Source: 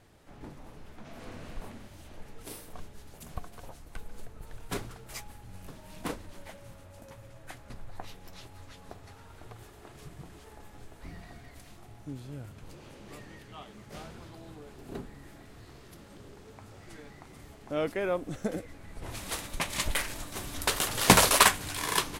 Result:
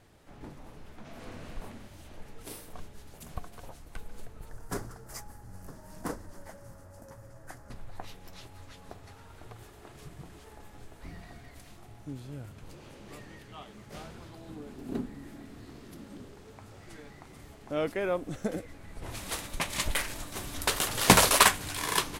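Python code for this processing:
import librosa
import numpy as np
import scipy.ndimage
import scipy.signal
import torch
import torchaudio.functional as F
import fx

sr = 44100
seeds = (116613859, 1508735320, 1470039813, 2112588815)

y = fx.band_shelf(x, sr, hz=3000.0, db=-11.5, octaves=1.1, at=(4.49, 7.71))
y = fx.peak_eq(y, sr, hz=250.0, db=11.0, octaves=0.77, at=(14.49, 16.25))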